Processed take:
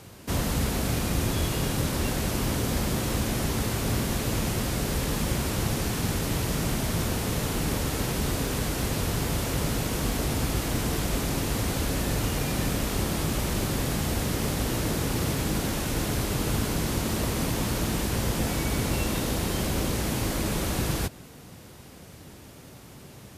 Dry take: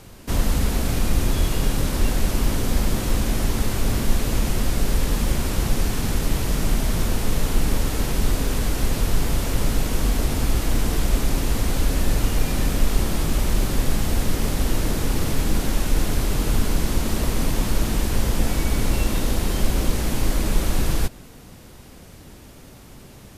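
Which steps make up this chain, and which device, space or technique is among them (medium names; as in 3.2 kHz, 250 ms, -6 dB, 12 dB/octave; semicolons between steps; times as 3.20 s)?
high-pass 110 Hz 12 dB/octave; low shelf boost with a cut just above (bass shelf 110 Hz +7.5 dB; peaking EQ 230 Hz -2.5 dB 0.77 oct); trim -1.5 dB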